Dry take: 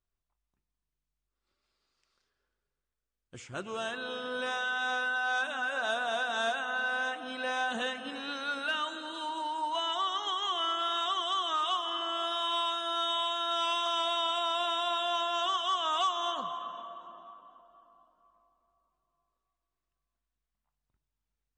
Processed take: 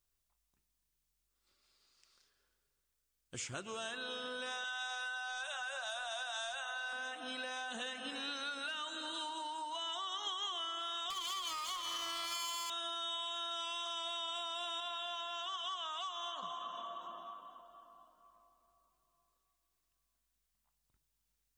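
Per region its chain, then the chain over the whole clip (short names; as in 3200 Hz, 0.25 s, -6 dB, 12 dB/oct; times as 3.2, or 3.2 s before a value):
4.64–6.93 Chebyshev band-stop 150–530 Hz, order 5 + tone controls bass +10 dB, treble +3 dB
11.1–12.7 minimum comb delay 0.94 ms + low shelf 210 Hz -7 dB
14.8–16.43 HPF 810 Hz 6 dB/oct + high shelf 5300 Hz -12 dB
whole clip: limiter -25 dBFS; compressor, threshold -42 dBFS; high shelf 3300 Hz +12 dB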